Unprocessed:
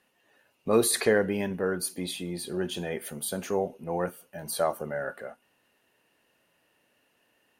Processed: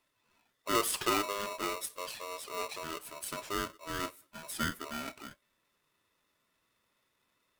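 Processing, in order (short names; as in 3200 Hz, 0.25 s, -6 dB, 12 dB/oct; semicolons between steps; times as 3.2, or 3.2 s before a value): bin magnitudes rounded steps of 15 dB; polarity switched at an audio rate 810 Hz; gain -7 dB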